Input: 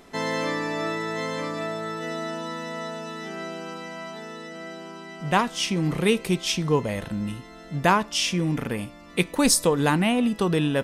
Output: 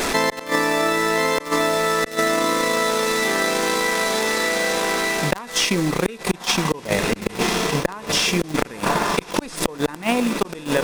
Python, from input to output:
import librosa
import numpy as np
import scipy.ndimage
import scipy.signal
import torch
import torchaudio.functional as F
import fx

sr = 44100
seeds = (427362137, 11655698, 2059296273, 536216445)

p1 = fx.delta_mod(x, sr, bps=64000, step_db=-31.5)
p2 = fx.notch(p1, sr, hz=3000.0, q=11.0)
p3 = p2 + fx.echo_diffused(p2, sr, ms=1132, feedback_pct=59, wet_db=-9.5, dry=0)
p4 = fx.rider(p3, sr, range_db=4, speed_s=0.5)
p5 = fx.gate_flip(p4, sr, shuts_db=-15.0, range_db=-35)
p6 = fx.high_shelf(p5, sr, hz=8600.0, db=-2.5)
p7 = fx.transient(p6, sr, attack_db=10, sustain_db=-9)
p8 = fx.peak_eq(p7, sr, hz=110.0, db=-10.5, octaves=2.0)
p9 = fx.quant_companded(p8, sr, bits=4)
p10 = p8 + (p9 * 10.0 ** (-5.0 / 20.0))
p11 = fx.env_flatten(p10, sr, amount_pct=70)
y = p11 * 10.0 ** (-2.0 / 20.0)